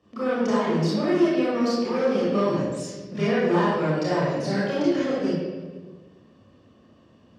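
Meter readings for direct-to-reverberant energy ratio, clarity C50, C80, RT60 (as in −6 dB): −9.0 dB, −2.5 dB, 1.0 dB, 1.4 s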